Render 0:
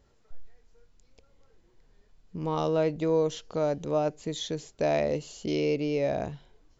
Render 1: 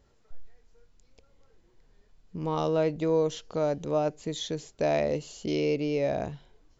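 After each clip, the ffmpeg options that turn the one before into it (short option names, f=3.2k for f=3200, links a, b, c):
-af anull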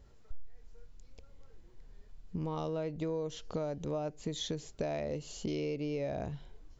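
-af "lowshelf=f=130:g=9,acompressor=threshold=-33dB:ratio=6"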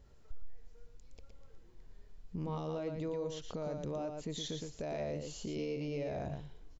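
-af "aecho=1:1:116:0.501,alimiter=level_in=3.5dB:limit=-24dB:level=0:latency=1:release=33,volume=-3.5dB,volume=-2dB"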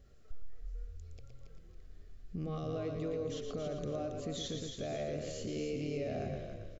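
-filter_complex "[0:a]asuperstop=centerf=930:order=8:qfactor=3.4,asplit=2[a][b];[b]asplit=4[c][d][e][f];[c]adelay=277,afreqshift=-41,volume=-6.5dB[g];[d]adelay=554,afreqshift=-82,volume=-15.9dB[h];[e]adelay=831,afreqshift=-123,volume=-25.2dB[i];[f]adelay=1108,afreqshift=-164,volume=-34.6dB[j];[g][h][i][j]amix=inputs=4:normalize=0[k];[a][k]amix=inputs=2:normalize=0"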